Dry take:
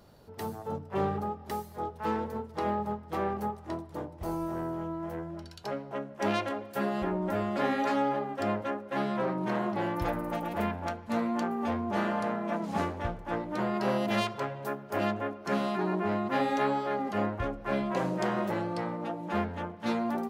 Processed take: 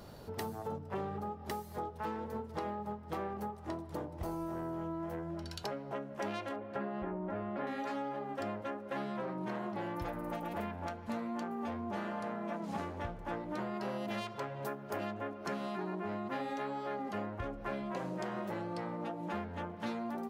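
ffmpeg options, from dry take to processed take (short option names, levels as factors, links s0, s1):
-filter_complex "[0:a]asettb=1/sr,asplit=3[s0][s1][s2];[s0]atrim=end=6.564[s3];[s1]atrim=start=6.56:end=7.67,asetpts=PTS-STARTPTS,afade=t=in:d=0.004:c=qsin,afade=t=out:st=1.106:d=0.004:c=qsin,lowpass=2100[s4];[s2]atrim=start=7.666[s5];[s3][s4]acrossfade=d=0.004:c1=hsin:c2=qsin[s6];[s6][s5]acrossfade=d=0.004:c1=qsin:c2=hsin,acompressor=threshold=0.00708:ratio=6,volume=2"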